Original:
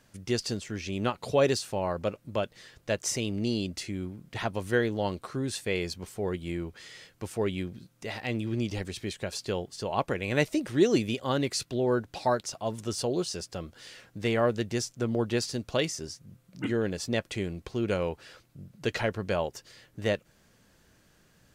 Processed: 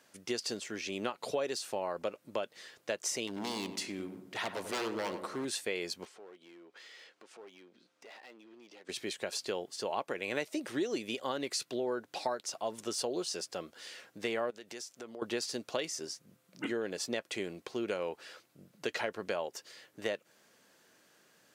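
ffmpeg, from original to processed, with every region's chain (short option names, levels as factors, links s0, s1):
-filter_complex "[0:a]asettb=1/sr,asplit=3[s0][s1][s2];[s0]atrim=end=3.274[s3];[s1]atrim=start=3.27:end=5.45,asetpts=PTS-STARTPTS,afade=t=in:d=0.004:c=qsin,afade=t=out:st=2.176:d=0.004:c=qsin,aeval=exprs='0.0473*(abs(mod(val(0)/0.0473+3,4)-2)-1)':c=same,asplit=2[s4][s5];[s5]adelay=94,lowpass=f=1400:p=1,volume=0.398,asplit=2[s6][s7];[s7]adelay=94,lowpass=f=1400:p=1,volume=0.54,asplit=2[s8][s9];[s9]adelay=94,lowpass=f=1400:p=1,volume=0.54,asplit=2[s10][s11];[s11]adelay=94,lowpass=f=1400:p=1,volume=0.54,asplit=2[s12][s13];[s13]adelay=94,lowpass=f=1400:p=1,volume=0.54,asplit=2[s14][s15];[s15]adelay=94,lowpass=f=1400:p=1,volume=0.54[s16];[s4][s6][s8][s10][s12][s14][s16]amix=inputs=7:normalize=0,atrim=end_sample=96138[s17];[s2]atrim=start=5.446[s18];[s3][s17]acrossfade=d=0.004:c1=hsin:c2=qsin[s19];[s19][s18]acrossfade=d=0.004:c1=qsin:c2=hsin,asettb=1/sr,asplit=3[s20][s21][s22];[s20]atrim=end=6.054[s23];[s21]atrim=start=6.05:end=8.89,asetpts=PTS-STARTPTS,afade=t=in:d=0.004:c=qsin,afade=t=out:st=2.836:d=0.004:c=qsin,acompressor=threshold=0.00355:ratio=3:attack=3.2:release=140:knee=1:detection=peak,highpass=300,lowpass=5300,aeval=exprs='clip(val(0),-1,0.00335)':c=same[s24];[s22]atrim=start=8.886[s25];[s23][s24]acrossfade=d=0.004:c1=hsin:c2=qsin[s26];[s26][s25]acrossfade=d=0.004:c1=qsin:c2=hsin,asettb=1/sr,asplit=3[s27][s28][s29];[s27]atrim=end=14.504[s30];[s28]atrim=start=14.5:end=15.22,asetpts=PTS-STARTPTS,afade=t=in:d=0.004:c=qsin,afade=t=out:st=0.716:d=0.004:c=qsin,lowshelf=f=220:g=-11.5,acompressor=threshold=0.01:ratio=5:attack=3.2:release=140:knee=1:detection=peak[s31];[s29]atrim=start=15.216[s32];[s30][s31]acrossfade=d=0.004:c1=hsin:c2=qsin[s33];[s33][s32]acrossfade=d=0.004:c1=qsin:c2=hsin,highpass=330,acompressor=threshold=0.0282:ratio=5"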